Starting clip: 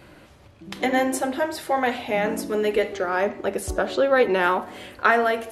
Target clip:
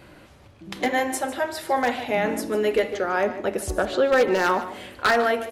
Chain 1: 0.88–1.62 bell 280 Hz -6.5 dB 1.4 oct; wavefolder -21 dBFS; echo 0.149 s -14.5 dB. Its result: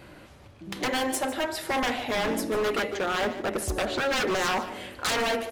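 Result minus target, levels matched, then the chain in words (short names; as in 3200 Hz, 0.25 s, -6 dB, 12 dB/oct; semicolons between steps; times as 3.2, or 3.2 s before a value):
wavefolder: distortion +18 dB
0.88–1.62 bell 280 Hz -6.5 dB 1.4 oct; wavefolder -11.5 dBFS; echo 0.149 s -14.5 dB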